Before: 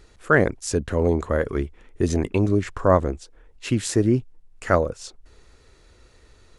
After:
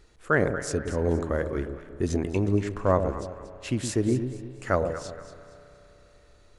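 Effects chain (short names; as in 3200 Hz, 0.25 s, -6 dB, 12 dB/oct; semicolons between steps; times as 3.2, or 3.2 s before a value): echo with dull and thin repeats by turns 0.117 s, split 830 Hz, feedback 57%, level -7 dB; spring tank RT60 3.7 s, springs 31 ms, chirp 35 ms, DRR 15 dB; gain -5.5 dB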